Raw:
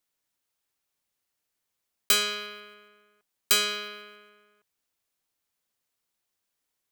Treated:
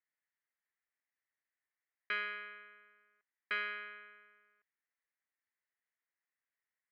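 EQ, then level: band-pass 1900 Hz, Q 5.9; air absorption 340 m; tilt -3.5 dB/oct; +8.5 dB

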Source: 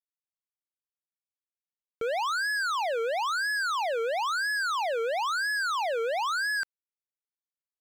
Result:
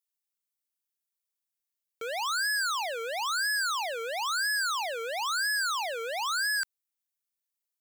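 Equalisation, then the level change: tilt +3.5 dB/oct; -3.5 dB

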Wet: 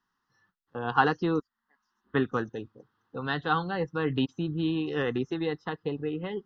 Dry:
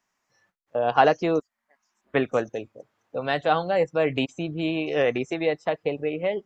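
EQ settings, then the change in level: high shelf 4300 Hz -10.5 dB; fixed phaser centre 2300 Hz, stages 6; +2.0 dB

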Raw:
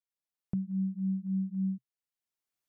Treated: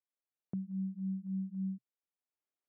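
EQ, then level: HPF 280 Hz 12 dB/oct; air absorption 340 m; tilt -2 dB/oct; -2.5 dB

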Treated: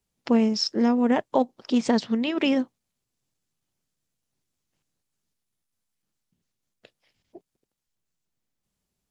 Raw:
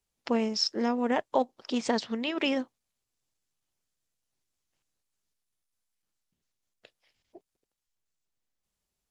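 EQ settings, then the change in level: bell 170 Hz +8.5 dB 2.1 oct; +1.5 dB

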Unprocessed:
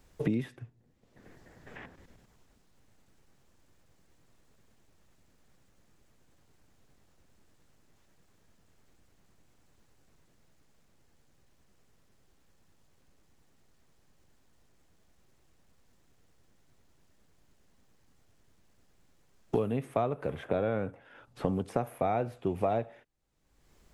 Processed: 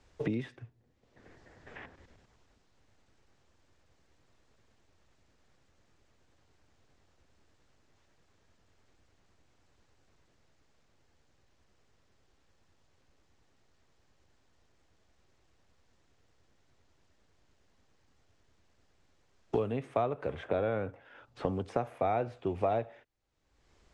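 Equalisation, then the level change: LPF 10000 Hz; three-band isolator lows -18 dB, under 160 Hz, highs -23 dB, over 7900 Hz; resonant low shelf 120 Hz +13 dB, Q 1.5; 0.0 dB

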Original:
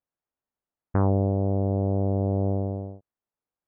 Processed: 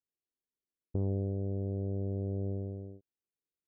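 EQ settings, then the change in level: dynamic EQ 310 Hz, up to -7 dB, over -37 dBFS, Q 1; ladder low-pass 470 Hz, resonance 45%; 0.0 dB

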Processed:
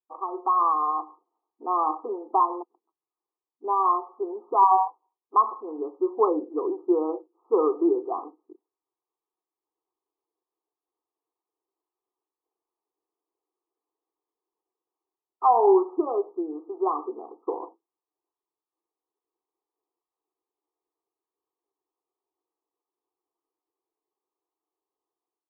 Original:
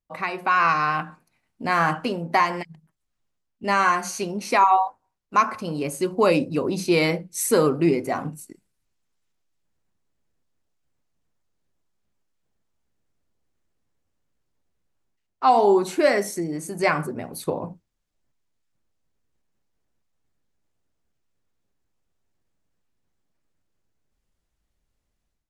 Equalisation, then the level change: brick-wall FIR band-pass 250–1300 Hz; fixed phaser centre 390 Hz, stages 8; 0.0 dB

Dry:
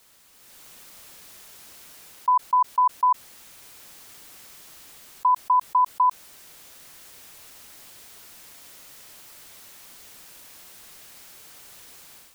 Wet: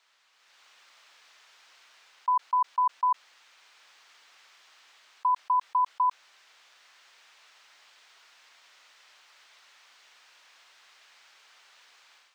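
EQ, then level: HPF 1000 Hz 12 dB/oct; air absorption 160 m; -1.5 dB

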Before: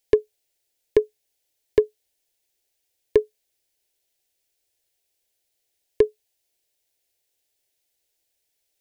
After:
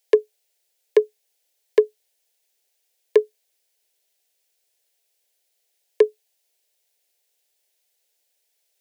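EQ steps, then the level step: steep high-pass 390 Hz; +3.5 dB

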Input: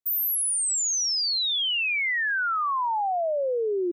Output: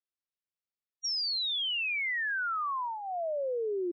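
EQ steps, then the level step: brick-wall FIR low-pass 5700 Hz; bell 830 Hz -8.5 dB 0.24 oct; -6.0 dB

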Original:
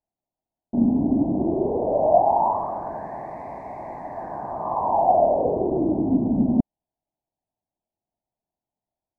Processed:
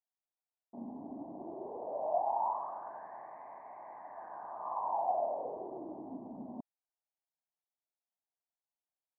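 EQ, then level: band-pass 1300 Hz, Q 2; air absorption 350 m; -5.0 dB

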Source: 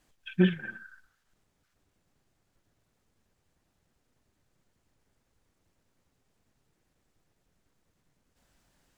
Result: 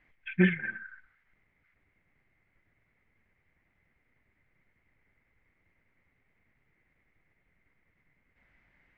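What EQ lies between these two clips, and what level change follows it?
synth low-pass 2100 Hz, resonance Q 11; low shelf 200 Hz +4 dB; -3.0 dB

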